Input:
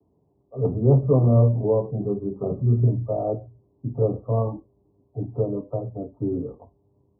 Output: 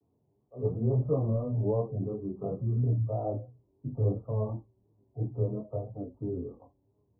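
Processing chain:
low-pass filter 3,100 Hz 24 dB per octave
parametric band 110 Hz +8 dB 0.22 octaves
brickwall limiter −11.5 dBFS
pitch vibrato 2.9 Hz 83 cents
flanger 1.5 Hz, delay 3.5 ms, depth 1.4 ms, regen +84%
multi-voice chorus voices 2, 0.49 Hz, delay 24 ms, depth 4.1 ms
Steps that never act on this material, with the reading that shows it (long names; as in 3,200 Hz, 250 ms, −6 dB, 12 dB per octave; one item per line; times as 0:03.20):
low-pass filter 3,100 Hz: nothing at its input above 760 Hz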